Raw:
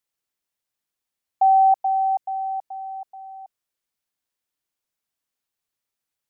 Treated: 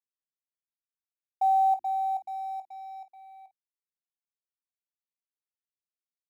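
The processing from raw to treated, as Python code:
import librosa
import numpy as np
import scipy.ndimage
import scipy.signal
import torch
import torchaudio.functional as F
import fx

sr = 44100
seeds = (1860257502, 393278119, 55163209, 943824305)

p1 = fx.law_mismatch(x, sr, coded='A')
p2 = fx.hum_notches(p1, sr, base_hz=50, count=7)
p3 = p2 + fx.room_early_taps(p2, sr, ms=(21, 51), db=(-11.0, -14.5), dry=0)
y = F.gain(torch.from_numpy(p3), -8.5).numpy()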